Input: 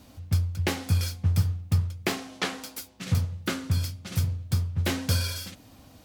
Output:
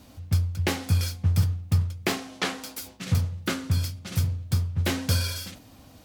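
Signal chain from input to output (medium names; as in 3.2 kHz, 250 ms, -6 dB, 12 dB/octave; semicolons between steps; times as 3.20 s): decay stretcher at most 130 dB/s; trim +1 dB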